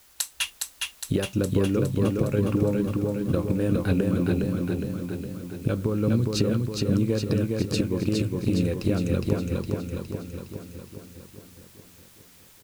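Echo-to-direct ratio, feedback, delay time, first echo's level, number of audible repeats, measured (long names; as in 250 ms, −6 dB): −1.0 dB, 59%, 412 ms, −3.0 dB, 7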